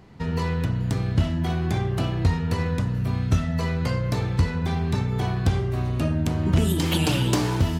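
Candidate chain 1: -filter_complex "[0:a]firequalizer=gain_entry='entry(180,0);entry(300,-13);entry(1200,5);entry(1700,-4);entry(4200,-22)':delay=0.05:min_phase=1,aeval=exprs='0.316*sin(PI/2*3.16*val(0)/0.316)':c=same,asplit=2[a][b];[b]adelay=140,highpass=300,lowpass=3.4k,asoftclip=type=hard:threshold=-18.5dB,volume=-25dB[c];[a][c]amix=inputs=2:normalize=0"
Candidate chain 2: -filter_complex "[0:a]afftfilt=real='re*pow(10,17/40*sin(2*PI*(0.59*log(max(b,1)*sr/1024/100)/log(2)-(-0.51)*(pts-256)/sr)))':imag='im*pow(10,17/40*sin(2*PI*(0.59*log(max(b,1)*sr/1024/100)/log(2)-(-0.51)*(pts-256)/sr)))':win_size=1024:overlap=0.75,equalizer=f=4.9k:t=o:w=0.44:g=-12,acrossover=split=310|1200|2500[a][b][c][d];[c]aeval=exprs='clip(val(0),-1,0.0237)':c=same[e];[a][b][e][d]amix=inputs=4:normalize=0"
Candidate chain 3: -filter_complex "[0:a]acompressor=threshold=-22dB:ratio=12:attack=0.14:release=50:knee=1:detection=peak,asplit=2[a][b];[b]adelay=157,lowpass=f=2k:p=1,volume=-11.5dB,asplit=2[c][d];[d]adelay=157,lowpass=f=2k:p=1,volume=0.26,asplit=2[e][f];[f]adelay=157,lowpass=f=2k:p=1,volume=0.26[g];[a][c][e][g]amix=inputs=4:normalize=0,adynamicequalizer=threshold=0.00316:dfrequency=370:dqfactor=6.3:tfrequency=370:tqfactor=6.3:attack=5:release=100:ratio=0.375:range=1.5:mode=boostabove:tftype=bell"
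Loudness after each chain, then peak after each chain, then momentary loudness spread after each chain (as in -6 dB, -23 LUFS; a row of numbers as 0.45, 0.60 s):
-15.5, -21.5, -28.0 LUFS; -10.0, -5.5, -18.0 dBFS; 1, 5, 1 LU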